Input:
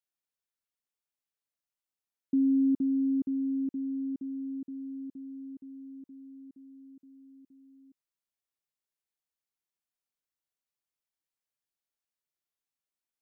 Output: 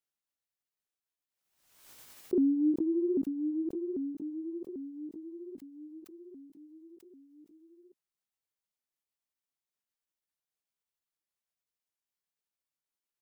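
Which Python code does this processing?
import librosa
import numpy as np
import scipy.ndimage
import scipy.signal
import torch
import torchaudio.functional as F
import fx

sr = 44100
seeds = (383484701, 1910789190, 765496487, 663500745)

y = fx.pitch_ramps(x, sr, semitones=5.5, every_ms=793)
y = fx.pre_swell(y, sr, db_per_s=64.0)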